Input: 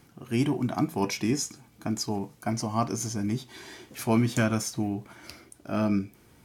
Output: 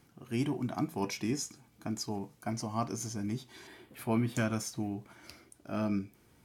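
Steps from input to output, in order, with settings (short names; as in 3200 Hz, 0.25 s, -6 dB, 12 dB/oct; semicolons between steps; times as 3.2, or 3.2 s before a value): 3.67–4.35 bell 6100 Hz -14.5 dB 0.74 oct; gain -6.5 dB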